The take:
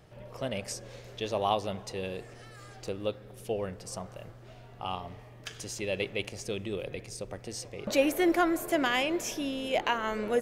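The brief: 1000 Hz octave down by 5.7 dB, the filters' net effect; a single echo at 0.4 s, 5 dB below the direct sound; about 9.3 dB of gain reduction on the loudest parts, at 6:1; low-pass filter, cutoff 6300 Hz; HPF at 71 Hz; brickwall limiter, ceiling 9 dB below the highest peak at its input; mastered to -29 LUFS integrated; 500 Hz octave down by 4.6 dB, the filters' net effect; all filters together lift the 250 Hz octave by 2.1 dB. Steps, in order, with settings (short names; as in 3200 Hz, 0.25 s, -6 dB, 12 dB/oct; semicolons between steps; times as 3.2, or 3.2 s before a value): HPF 71 Hz; LPF 6300 Hz; bell 250 Hz +6.5 dB; bell 500 Hz -7 dB; bell 1000 Hz -5.5 dB; compressor 6:1, threshold -32 dBFS; limiter -28 dBFS; echo 0.4 s -5 dB; gain +10 dB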